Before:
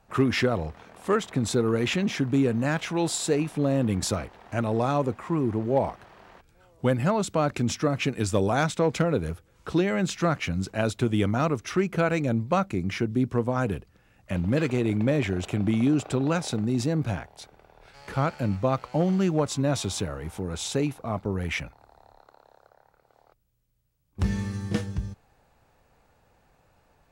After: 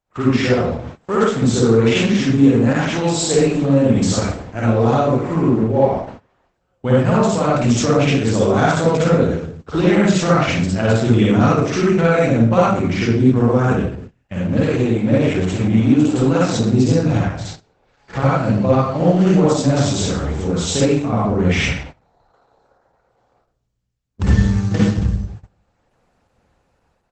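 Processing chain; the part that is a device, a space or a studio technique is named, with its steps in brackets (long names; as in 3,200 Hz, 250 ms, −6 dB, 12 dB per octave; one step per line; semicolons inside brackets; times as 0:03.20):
speakerphone in a meeting room (convolution reverb RT60 0.65 s, pre-delay 49 ms, DRR −6.5 dB; far-end echo of a speakerphone 80 ms, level −21 dB; automatic gain control gain up to 14 dB; noise gate −30 dBFS, range −19 dB; level −1.5 dB; Opus 12 kbit/s 48,000 Hz)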